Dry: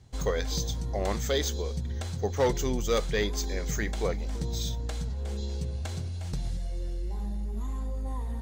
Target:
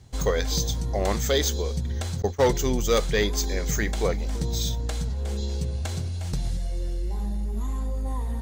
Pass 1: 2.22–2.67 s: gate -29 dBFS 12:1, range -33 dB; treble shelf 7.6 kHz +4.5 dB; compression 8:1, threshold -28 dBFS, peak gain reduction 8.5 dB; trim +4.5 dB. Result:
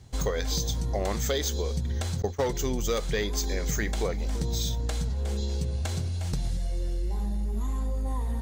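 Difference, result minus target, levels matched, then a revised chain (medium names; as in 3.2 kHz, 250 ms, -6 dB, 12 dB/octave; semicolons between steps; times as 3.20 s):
compression: peak gain reduction +8.5 dB
2.22–2.67 s: gate -29 dBFS 12:1, range -33 dB; treble shelf 7.6 kHz +4.5 dB; trim +4.5 dB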